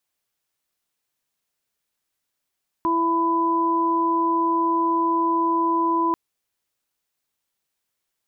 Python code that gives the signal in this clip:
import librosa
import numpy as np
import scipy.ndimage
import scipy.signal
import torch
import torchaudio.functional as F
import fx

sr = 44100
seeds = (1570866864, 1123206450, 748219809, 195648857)

y = fx.additive_steady(sr, length_s=3.29, hz=333.0, level_db=-22.5, upper_db=(-15.0, 3.0))